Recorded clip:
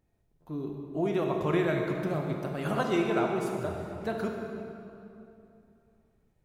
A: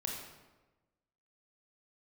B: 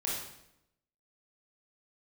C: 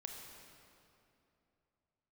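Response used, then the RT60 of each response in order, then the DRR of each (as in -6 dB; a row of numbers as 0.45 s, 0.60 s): C; 1.2 s, 0.80 s, 2.8 s; -0.5 dB, -5.0 dB, 1.5 dB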